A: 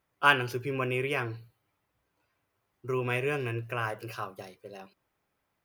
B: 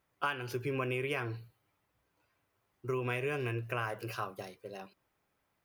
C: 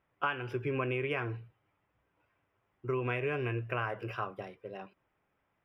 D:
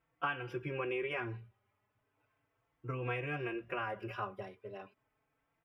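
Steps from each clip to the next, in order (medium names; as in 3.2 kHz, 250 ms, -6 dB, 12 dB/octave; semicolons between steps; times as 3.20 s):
compression 16:1, threshold -30 dBFS, peak gain reduction 15 dB
Savitzky-Golay filter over 25 samples; trim +1.5 dB
endless flanger 4 ms +0.36 Hz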